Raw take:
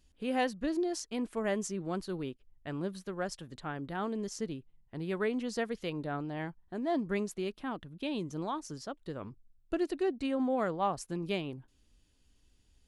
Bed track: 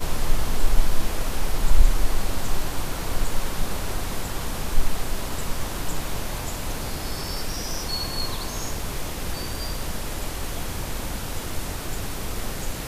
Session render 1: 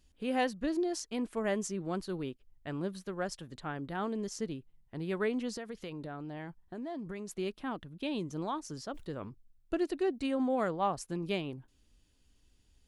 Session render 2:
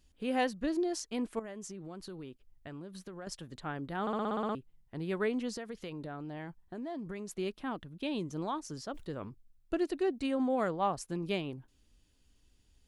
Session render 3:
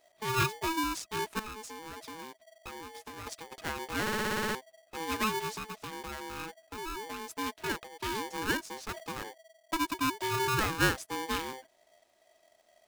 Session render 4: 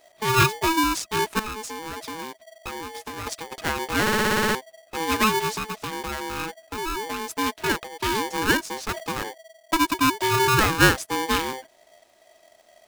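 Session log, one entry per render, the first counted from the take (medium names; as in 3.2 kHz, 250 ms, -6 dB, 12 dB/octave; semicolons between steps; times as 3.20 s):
5.55–7.35 s: compression, threshold -37 dBFS; 8.63–9.27 s: decay stretcher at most 100 dB/s; 10.14–10.69 s: treble shelf 6.5 kHz +5.5 dB
1.39–3.27 s: compression, threshold -41 dBFS; 4.01 s: stutter in place 0.06 s, 9 plays
small resonant body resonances 970/1900 Hz, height 12 dB, ringing for 25 ms; polarity switched at an audio rate 650 Hz
trim +10 dB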